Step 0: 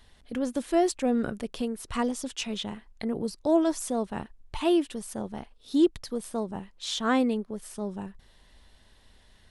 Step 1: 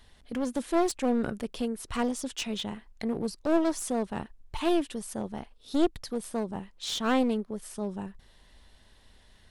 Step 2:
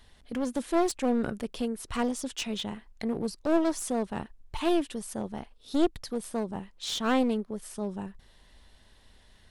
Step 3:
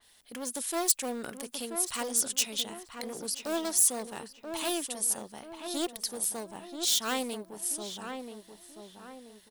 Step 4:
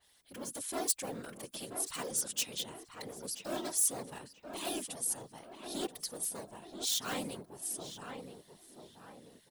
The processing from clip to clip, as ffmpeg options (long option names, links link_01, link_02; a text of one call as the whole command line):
ffmpeg -i in.wav -af "aeval=exprs='clip(val(0),-1,0.0335)':channel_layout=same" out.wav
ffmpeg -i in.wav -af anull out.wav
ffmpeg -i in.wav -filter_complex "[0:a]aemphasis=mode=production:type=riaa,asplit=2[link_01][link_02];[link_02]adelay=982,lowpass=frequency=1900:poles=1,volume=-6.5dB,asplit=2[link_03][link_04];[link_04]adelay=982,lowpass=frequency=1900:poles=1,volume=0.42,asplit=2[link_05][link_06];[link_06]adelay=982,lowpass=frequency=1900:poles=1,volume=0.42,asplit=2[link_07][link_08];[link_08]adelay=982,lowpass=frequency=1900:poles=1,volume=0.42,asplit=2[link_09][link_10];[link_10]adelay=982,lowpass=frequency=1900:poles=1,volume=0.42[link_11];[link_03][link_05][link_07][link_09][link_11]amix=inputs=5:normalize=0[link_12];[link_01][link_12]amix=inputs=2:normalize=0,adynamicequalizer=threshold=0.00891:dfrequency=3300:dqfactor=0.7:tfrequency=3300:tqfactor=0.7:attack=5:release=100:ratio=0.375:range=2:mode=boostabove:tftype=highshelf,volume=-4.5dB" out.wav
ffmpeg -i in.wav -af "afftfilt=real='hypot(re,im)*cos(2*PI*random(0))':imag='hypot(re,im)*sin(2*PI*random(1))':win_size=512:overlap=0.75" out.wav